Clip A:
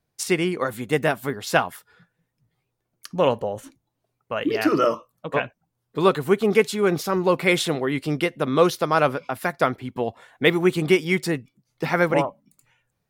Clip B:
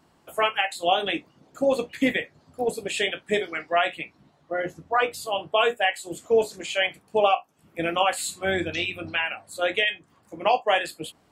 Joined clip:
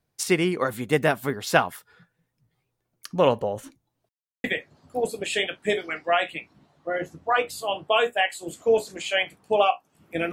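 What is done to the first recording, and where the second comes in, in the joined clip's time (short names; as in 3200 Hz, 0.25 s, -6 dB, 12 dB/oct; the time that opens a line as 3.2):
clip A
4.09–4.44 mute
4.44 switch to clip B from 2.08 s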